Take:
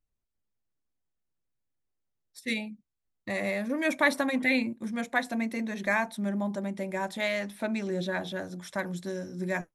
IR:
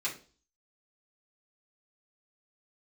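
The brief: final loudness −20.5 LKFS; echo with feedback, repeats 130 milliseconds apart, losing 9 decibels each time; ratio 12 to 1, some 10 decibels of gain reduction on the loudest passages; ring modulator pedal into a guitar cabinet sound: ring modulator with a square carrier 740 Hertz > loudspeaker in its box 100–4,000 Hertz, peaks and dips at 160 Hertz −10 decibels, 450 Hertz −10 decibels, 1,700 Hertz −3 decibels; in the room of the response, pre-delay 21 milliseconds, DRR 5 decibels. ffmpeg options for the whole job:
-filter_complex "[0:a]acompressor=threshold=-29dB:ratio=12,aecho=1:1:130|260|390|520:0.355|0.124|0.0435|0.0152,asplit=2[link_01][link_02];[1:a]atrim=start_sample=2205,adelay=21[link_03];[link_02][link_03]afir=irnorm=-1:irlink=0,volume=-10dB[link_04];[link_01][link_04]amix=inputs=2:normalize=0,aeval=exprs='val(0)*sgn(sin(2*PI*740*n/s))':channel_layout=same,highpass=100,equalizer=frequency=160:width_type=q:width=4:gain=-10,equalizer=frequency=450:width_type=q:width=4:gain=-10,equalizer=frequency=1700:width_type=q:width=4:gain=-3,lowpass=frequency=4000:width=0.5412,lowpass=frequency=4000:width=1.3066,volume=14.5dB"

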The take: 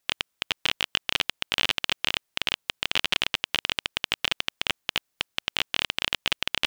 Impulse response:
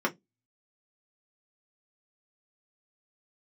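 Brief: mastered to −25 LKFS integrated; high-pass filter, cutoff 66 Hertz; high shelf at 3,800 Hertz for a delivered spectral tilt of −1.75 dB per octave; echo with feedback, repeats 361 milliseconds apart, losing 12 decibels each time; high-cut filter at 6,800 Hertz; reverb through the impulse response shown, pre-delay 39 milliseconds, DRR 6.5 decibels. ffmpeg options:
-filter_complex "[0:a]highpass=66,lowpass=6800,highshelf=frequency=3800:gain=-5,aecho=1:1:361|722|1083:0.251|0.0628|0.0157,asplit=2[link_01][link_02];[1:a]atrim=start_sample=2205,adelay=39[link_03];[link_02][link_03]afir=irnorm=-1:irlink=0,volume=-16.5dB[link_04];[link_01][link_04]amix=inputs=2:normalize=0,volume=3.5dB"

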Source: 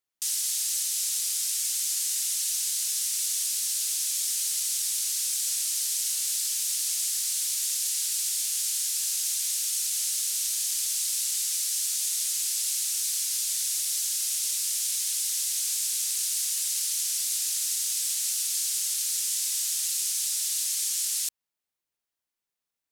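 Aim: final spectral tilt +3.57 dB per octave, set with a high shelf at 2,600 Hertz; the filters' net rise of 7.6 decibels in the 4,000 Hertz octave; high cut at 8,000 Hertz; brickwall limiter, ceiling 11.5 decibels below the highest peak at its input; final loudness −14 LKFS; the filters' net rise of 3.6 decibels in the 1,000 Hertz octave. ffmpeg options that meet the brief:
ffmpeg -i in.wav -af "lowpass=8000,equalizer=frequency=1000:width_type=o:gain=3,highshelf=frequency=2600:gain=7,equalizer=frequency=4000:width_type=o:gain=3.5,volume=14dB,alimiter=limit=-8dB:level=0:latency=1" out.wav

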